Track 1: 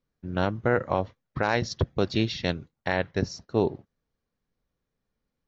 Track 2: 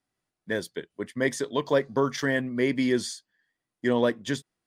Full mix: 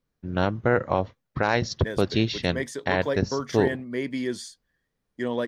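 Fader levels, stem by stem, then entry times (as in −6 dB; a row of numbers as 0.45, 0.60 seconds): +2.0, −4.5 decibels; 0.00, 1.35 seconds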